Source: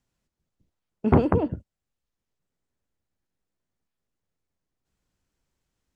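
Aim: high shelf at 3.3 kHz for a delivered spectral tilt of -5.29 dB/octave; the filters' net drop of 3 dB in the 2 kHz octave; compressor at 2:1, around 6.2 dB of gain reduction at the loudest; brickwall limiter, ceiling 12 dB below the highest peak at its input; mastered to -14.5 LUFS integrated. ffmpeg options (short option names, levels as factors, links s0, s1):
-af "equalizer=f=2000:t=o:g=-5.5,highshelf=f=3300:g=4,acompressor=threshold=0.0708:ratio=2,volume=7.5,alimiter=limit=0.75:level=0:latency=1"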